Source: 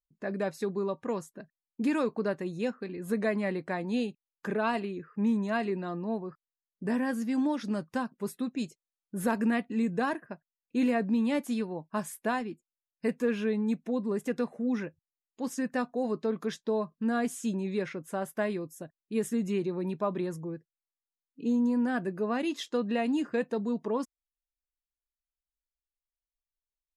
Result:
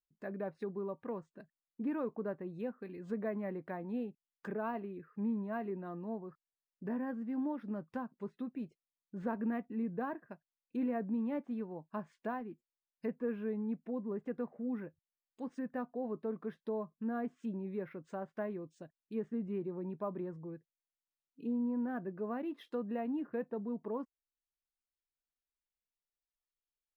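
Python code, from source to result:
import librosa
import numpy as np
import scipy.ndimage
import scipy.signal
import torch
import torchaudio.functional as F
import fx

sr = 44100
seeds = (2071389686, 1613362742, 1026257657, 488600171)

y = fx.env_lowpass_down(x, sr, base_hz=1400.0, full_db=-29.0)
y = np.interp(np.arange(len(y)), np.arange(len(y))[::3], y[::3])
y = y * librosa.db_to_amplitude(-8.0)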